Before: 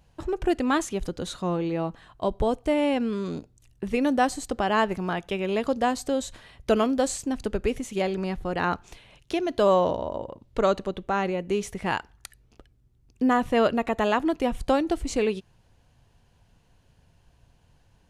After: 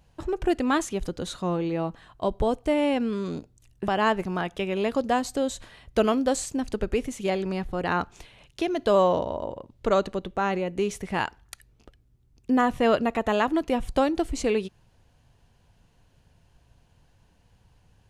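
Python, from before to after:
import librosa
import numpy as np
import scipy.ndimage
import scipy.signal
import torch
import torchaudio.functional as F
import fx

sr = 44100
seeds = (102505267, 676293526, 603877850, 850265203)

y = fx.edit(x, sr, fx.cut(start_s=3.88, length_s=0.72), tone=tone)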